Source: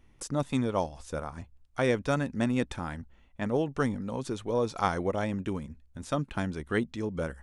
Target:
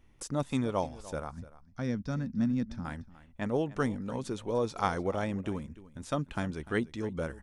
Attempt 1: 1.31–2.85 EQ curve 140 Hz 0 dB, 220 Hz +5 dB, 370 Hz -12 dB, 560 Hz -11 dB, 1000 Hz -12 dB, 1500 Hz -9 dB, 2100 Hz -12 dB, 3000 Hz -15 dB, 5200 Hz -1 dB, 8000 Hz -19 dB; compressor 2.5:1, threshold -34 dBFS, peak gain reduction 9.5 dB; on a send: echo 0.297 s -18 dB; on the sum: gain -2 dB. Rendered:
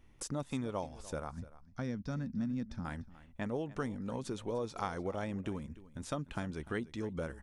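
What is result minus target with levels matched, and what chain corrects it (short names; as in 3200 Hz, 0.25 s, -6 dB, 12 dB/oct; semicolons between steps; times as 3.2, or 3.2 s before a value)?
compressor: peak gain reduction +9.5 dB
1.31–2.85 EQ curve 140 Hz 0 dB, 220 Hz +5 dB, 370 Hz -12 dB, 560 Hz -11 dB, 1000 Hz -12 dB, 1500 Hz -9 dB, 2100 Hz -12 dB, 3000 Hz -15 dB, 5200 Hz -1 dB, 8000 Hz -19 dB; on a send: echo 0.297 s -18 dB; on the sum: gain -2 dB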